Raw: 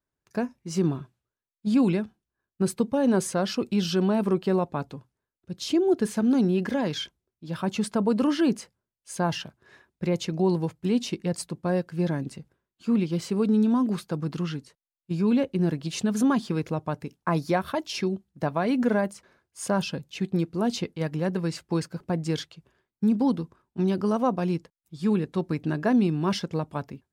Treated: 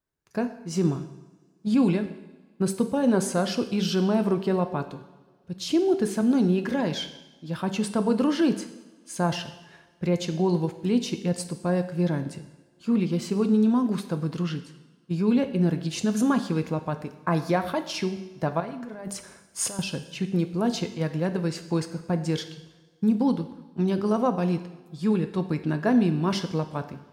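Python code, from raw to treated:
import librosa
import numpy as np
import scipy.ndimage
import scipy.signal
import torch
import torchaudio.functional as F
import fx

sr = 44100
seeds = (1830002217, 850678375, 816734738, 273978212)

y = fx.over_compress(x, sr, threshold_db=-35.0, ratio=-1.0, at=(18.6, 19.79))
y = fx.rev_double_slope(y, sr, seeds[0], early_s=0.92, late_s=3.0, knee_db=-22, drr_db=8.0)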